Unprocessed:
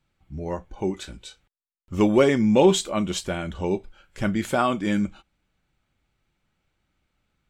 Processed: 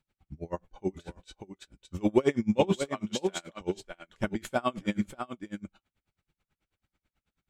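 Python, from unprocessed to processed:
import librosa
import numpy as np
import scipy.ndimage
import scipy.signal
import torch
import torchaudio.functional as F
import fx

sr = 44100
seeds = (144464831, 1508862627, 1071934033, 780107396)

y = fx.weighting(x, sr, curve='A', at=(2.86, 3.61))
y = y + 10.0 ** (-8.5 / 20.0) * np.pad(y, (int(597 * sr / 1000.0), 0))[:len(y)]
y = y * 10.0 ** (-30 * (0.5 - 0.5 * np.cos(2.0 * np.pi * 9.2 * np.arange(len(y)) / sr)) / 20.0)
y = y * 10.0 ** (-1.5 / 20.0)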